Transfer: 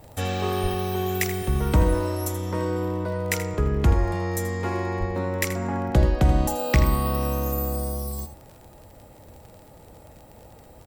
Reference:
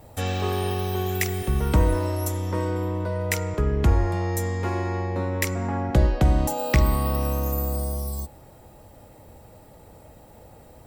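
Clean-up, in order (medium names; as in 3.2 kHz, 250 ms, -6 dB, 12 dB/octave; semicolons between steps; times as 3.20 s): de-click; de-plosive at 0.62/4.99 s; inverse comb 81 ms -11.5 dB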